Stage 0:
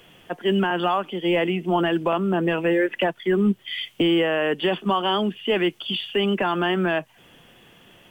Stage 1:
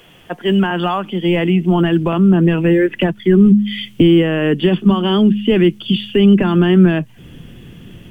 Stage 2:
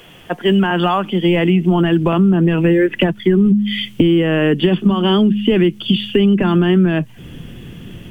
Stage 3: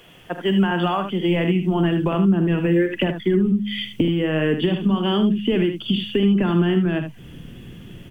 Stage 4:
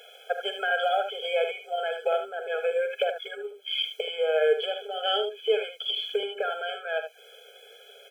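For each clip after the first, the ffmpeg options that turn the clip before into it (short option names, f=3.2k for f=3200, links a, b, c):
-filter_complex "[0:a]bandreject=f=103.6:t=h:w=4,bandreject=f=207.2:t=h:w=4,asubboost=boost=9.5:cutoff=240,asplit=2[a][b];[b]alimiter=limit=-12.5dB:level=0:latency=1:release=462,volume=0.5dB[c];[a][c]amix=inputs=2:normalize=0,volume=-1dB"
-af "acompressor=threshold=-13dB:ratio=6,volume=3.5dB"
-af "aecho=1:1:46|76:0.237|0.376,volume=-6.5dB"
-af "afftfilt=real='re*eq(mod(floor(b*sr/1024/430),2),1)':imag='im*eq(mod(floor(b*sr/1024/430),2),1)':win_size=1024:overlap=0.75,volume=2dB"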